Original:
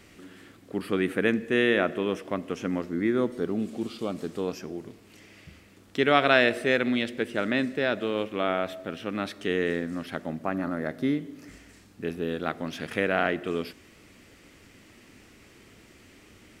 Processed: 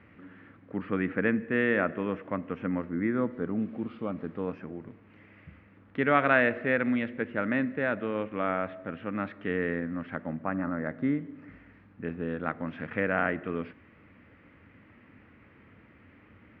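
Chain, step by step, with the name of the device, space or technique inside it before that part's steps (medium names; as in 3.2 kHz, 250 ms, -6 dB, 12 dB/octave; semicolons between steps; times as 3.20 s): bass cabinet (cabinet simulation 67–2100 Hz, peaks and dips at 91 Hz +3 dB, 380 Hz -9 dB, 700 Hz -5 dB)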